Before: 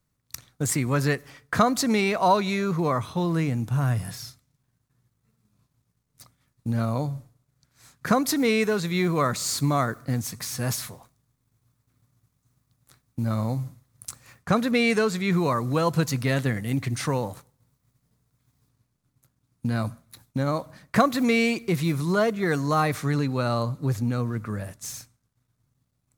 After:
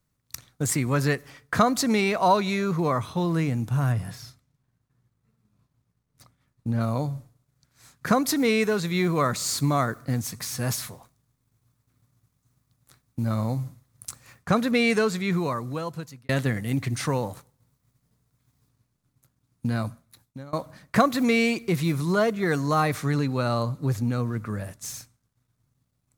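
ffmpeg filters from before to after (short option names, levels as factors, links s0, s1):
-filter_complex "[0:a]asettb=1/sr,asplit=3[s0][s1][s2];[s0]atrim=end=3.924[s3];[s1]atrim=start=3.92:end=6.81,asetpts=PTS-STARTPTS,afade=t=in:d=0.004:c=qsin,afade=t=out:st=2.886:d=0.004:c=qsin,highshelf=f=3800:g=-8[s4];[s2]atrim=start=6.806[s5];[s3][s4]acrossfade=d=0.004:c1=hsin:c2=qsin[s6];[s6][s5]acrossfade=d=0.004:c1=qsin:c2=hsin,asplit=3[s7][s8][s9];[s7]atrim=end=16.29,asetpts=PTS-STARTPTS,afade=t=out:st=15.07:d=1.22[s10];[s8]atrim=start=16.29:end=20.53,asetpts=PTS-STARTPTS,afade=t=in:d=0.004:c=hsin,afade=t=out:st=3.41:d=0.83:silence=0.0630957[s11];[s9]atrim=start=20.53,asetpts=PTS-STARTPTS,afade=t=in:d=0.004:c=hsin:silence=0.0630957[s12];[s10][s11][s12]concat=n=3:v=0:a=1"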